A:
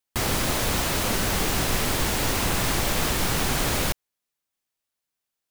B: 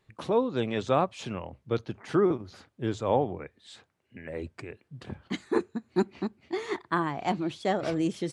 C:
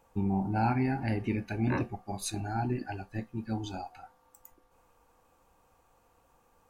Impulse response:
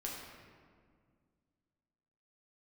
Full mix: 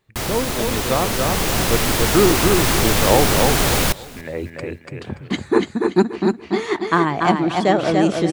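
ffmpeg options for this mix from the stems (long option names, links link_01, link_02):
-filter_complex "[0:a]volume=0dB,asplit=2[link_01][link_02];[link_02]volume=-22dB[link_03];[1:a]volume=2dB,asplit=2[link_04][link_05];[link_05]volume=-4dB[link_06];[link_03][link_06]amix=inputs=2:normalize=0,aecho=0:1:288|576|864|1152:1|0.28|0.0784|0.022[link_07];[link_01][link_04][link_07]amix=inputs=3:normalize=0,dynaudnorm=framelen=550:gausssize=5:maxgain=11.5dB"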